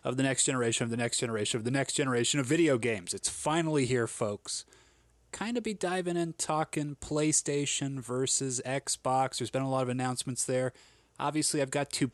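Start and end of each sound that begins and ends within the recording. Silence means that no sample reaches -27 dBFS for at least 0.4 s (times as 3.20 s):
5.34–10.68 s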